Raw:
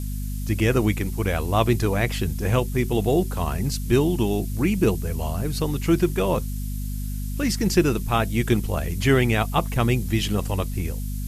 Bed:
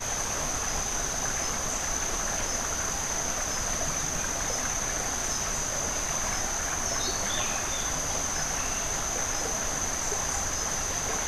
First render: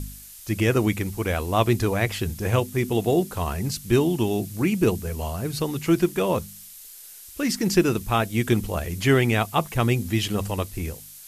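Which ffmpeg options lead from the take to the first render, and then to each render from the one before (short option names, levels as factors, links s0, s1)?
-af "bandreject=f=50:t=h:w=4,bandreject=f=100:t=h:w=4,bandreject=f=150:t=h:w=4,bandreject=f=200:t=h:w=4,bandreject=f=250:t=h:w=4"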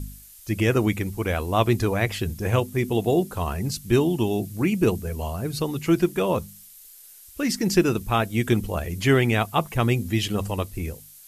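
-af "afftdn=nr=6:nf=-44"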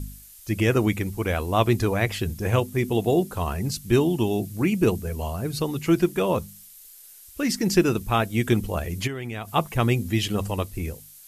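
-filter_complex "[0:a]asplit=3[s0][s1][s2];[s0]afade=t=out:st=9.06:d=0.02[s3];[s1]acompressor=threshold=0.0447:ratio=20:attack=3.2:release=140:knee=1:detection=peak,afade=t=in:st=9.06:d=0.02,afade=t=out:st=9.53:d=0.02[s4];[s2]afade=t=in:st=9.53:d=0.02[s5];[s3][s4][s5]amix=inputs=3:normalize=0"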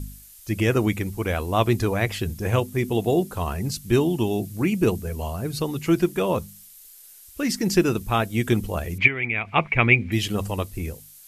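-filter_complex "[0:a]asettb=1/sr,asplit=3[s0][s1][s2];[s0]atrim=end=8.984[s3];[s1]atrim=start=8.98:end=10.12,asetpts=PTS-STARTPTS,afade=t=in:d=0.004:c=qsin,afade=t=out:st=1.136:d=0.004:c=qsin,lowpass=f=2300:t=q:w=11[s4];[s2]atrim=start=10.116[s5];[s3][s4]acrossfade=d=0.004:c1=hsin:c2=qsin[s6];[s6][s5]acrossfade=d=0.004:c1=qsin:c2=hsin"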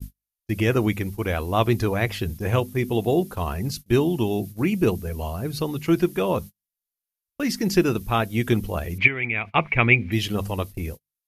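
-af "agate=range=0.00891:threshold=0.0224:ratio=16:detection=peak,equalizer=f=7900:t=o:w=0.47:g=-7"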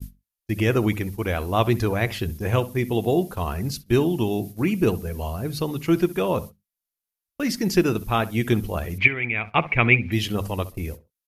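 -filter_complex "[0:a]asplit=2[s0][s1];[s1]adelay=65,lowpass=f=1700:p=1,volume=0.158,asplit=2[s2][s3];[s3]adelay=65,lowpass=f=1700:p=1,volume=0.24[s4];[s0][s2][s4]amix=inputs=3:normalize=0"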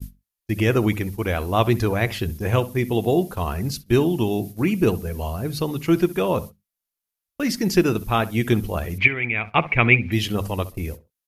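-af "volume=1.19,alimiter=limit=0.891:level=0:latency=1"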